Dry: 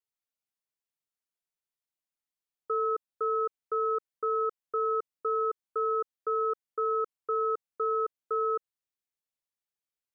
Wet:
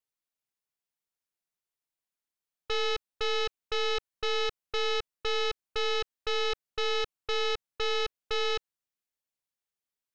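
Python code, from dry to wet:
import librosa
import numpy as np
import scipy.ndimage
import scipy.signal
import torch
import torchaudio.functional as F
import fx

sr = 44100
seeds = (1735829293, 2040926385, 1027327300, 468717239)

y = fx.tracing_dist(x, sr, depth_ms=0.39)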